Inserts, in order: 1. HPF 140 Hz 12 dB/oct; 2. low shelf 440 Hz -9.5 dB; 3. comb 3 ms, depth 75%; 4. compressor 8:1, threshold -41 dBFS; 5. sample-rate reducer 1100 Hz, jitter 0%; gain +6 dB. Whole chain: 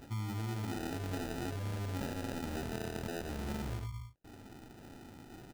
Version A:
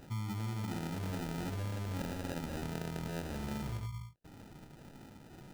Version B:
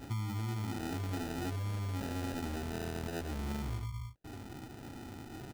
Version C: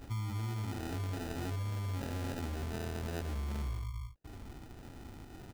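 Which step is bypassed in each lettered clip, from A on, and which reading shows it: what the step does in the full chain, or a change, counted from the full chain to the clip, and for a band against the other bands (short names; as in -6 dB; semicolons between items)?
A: 3, 125 Hz band +1.5 dB; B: 2, 125 Hz band +1.5 dB; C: 1, 125 Hz band +4.0 dB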